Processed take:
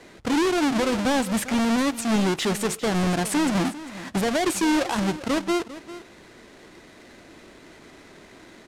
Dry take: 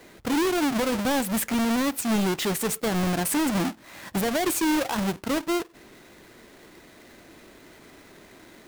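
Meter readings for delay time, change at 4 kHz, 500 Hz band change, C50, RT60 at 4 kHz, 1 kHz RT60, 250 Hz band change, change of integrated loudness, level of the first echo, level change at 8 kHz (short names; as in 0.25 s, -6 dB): 0.399 s, +2.0 dB, +2.0 dB, none, none, none, +2.0 dB, +1.5 dB, -15.5 dB, -0.5 dB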